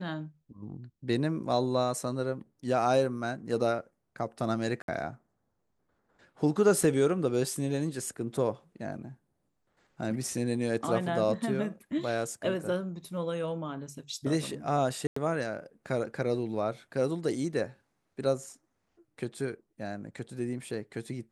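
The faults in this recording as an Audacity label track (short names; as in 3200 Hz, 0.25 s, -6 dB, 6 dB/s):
4.820000	4.880000	gap 62 ms
15.070000	15.160000	gap 94 ms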